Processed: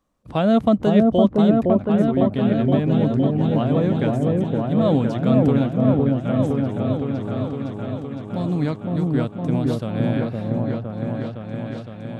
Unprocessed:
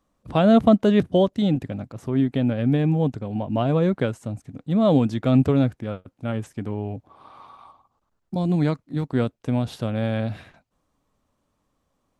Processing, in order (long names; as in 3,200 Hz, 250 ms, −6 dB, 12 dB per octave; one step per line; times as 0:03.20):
echo whose low-pass opens from repeat to repeat 512 ms, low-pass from 750 Hz, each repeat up 1 octave, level 0 dB
level −1.5 dB